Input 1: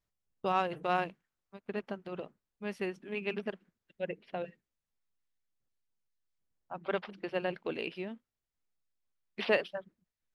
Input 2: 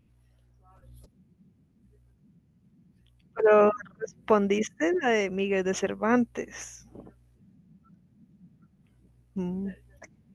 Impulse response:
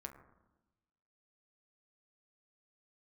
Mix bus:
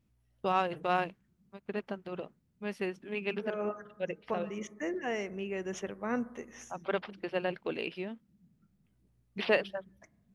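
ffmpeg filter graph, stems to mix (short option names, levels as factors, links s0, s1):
-filter_complex "[0:a]volume=1.12,asplit=2[s0][s1];[1:a]volume=0.237,asplit=2[s2][s3];[s3]volume=0.668[s4];[s1]apad=whole_len=456337[s5];[s2][s5]sidechaincompress=threshold=0.00141:ratio=8:attack=11:release=126[s6];[2:a]atrim=start_sample=2205[s7];[s4][s7]afir=irnorm=-1:irlink=0[s8];[s0][s6][s8]amix=inputs=3:normalize=0"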